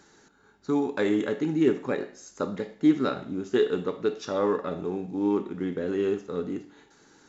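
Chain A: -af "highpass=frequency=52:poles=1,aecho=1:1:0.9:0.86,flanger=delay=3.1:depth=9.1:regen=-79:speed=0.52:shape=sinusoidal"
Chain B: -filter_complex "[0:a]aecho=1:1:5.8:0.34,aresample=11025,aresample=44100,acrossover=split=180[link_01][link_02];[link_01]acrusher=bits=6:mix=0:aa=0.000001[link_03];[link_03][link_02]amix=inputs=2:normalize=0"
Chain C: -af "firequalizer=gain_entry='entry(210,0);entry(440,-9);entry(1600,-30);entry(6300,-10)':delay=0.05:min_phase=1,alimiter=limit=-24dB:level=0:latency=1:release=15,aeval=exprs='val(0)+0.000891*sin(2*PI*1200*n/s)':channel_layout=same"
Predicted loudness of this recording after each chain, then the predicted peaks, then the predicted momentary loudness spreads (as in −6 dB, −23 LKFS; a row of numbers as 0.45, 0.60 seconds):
−31.5, −27.5, −35.0 LKFS; −12.5, −9.0, −24.0 dBFS; 10, 10, 6 LU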